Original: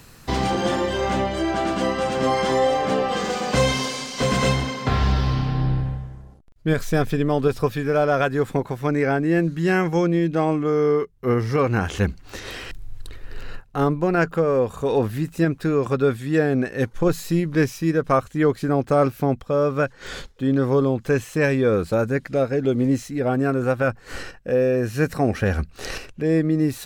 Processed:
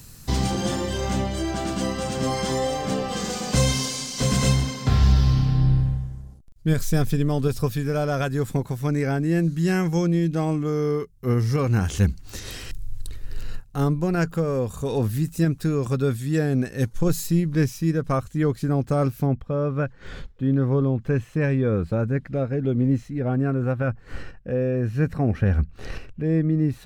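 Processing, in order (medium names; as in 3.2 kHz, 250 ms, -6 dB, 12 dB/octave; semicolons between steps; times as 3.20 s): tone controls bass +11 dB, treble +13 dB, from 17.26 s treble +7 dB, from 19.26 s treble -9 dB; trim -7 dB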